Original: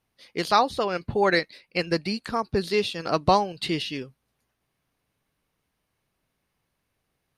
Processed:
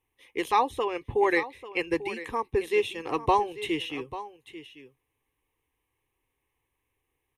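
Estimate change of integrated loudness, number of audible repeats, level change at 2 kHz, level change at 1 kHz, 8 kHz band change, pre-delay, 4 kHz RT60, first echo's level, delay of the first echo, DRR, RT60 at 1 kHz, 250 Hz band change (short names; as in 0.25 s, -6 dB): -3.0 dB, 1, -2.0 dB, -2.0 dB, -5.5 dB, none, none, -14.5 dB, 0.842 s, none, none, -4.0 dB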